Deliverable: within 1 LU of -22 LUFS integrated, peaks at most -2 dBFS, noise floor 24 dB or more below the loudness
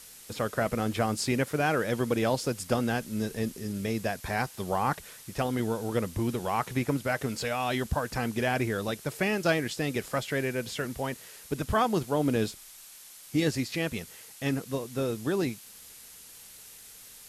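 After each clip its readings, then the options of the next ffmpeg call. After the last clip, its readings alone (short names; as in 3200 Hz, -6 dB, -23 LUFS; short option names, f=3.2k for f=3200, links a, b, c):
noise floor -50 dBFS; noise floor target -54 dBFS; loudness -30.0 LUFS; peak -13.5 dBFS; loudness target -22.0 LUFS
-> -af "afftdn=nr=6:nf=-50"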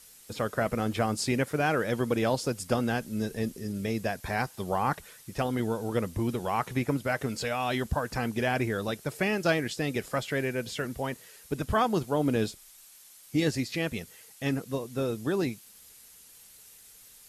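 noise floor -54 dBFS; loudness -30.0 LUFS; peak -13.5 dBFS; loudness target -22.0 LUFS
-> -af "volume=8dB"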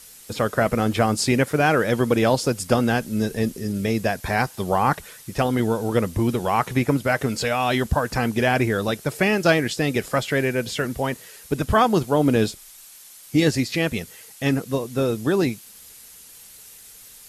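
loudness -22.0 LUFS; peak -5.5 dBFS; noise floor -46 dBFS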